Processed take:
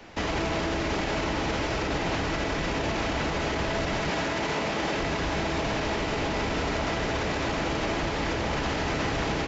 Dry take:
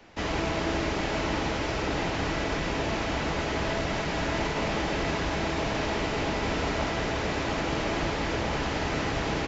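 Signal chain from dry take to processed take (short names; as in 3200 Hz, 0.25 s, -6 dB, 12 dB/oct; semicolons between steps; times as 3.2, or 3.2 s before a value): 4.1–5 HPF 160 Hz 6 dB/oct; limiter -25.5 dBFS, peak gain reduction 9 dB; gain +6 dB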